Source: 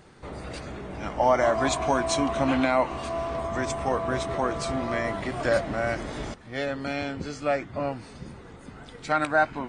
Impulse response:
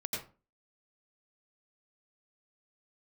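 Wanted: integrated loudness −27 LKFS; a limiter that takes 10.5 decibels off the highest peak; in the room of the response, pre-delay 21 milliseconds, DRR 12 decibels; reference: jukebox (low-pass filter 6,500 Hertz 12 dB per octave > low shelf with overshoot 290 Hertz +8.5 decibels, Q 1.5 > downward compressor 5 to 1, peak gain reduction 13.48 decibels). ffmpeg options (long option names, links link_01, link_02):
-filter_complex "[0:a]alimiter=limit=-19.5dB:level=0:latency=1,asplit=2[link_01][link_02];[1:a]atrim=start_sample=2205,adelay=21[link_03];[link_02][link_03]afir=irnorm=-1:irlink=0,volume=-14.5dB[link_04];[link_01][link_04]amix=inputs=2:normalize=0,lowpass=6500,lowshelf=frequency=290:width_type=q:width=1.5:gain=8.5,acompressor=threshold=-32dB:ratio=5,volume=9dB"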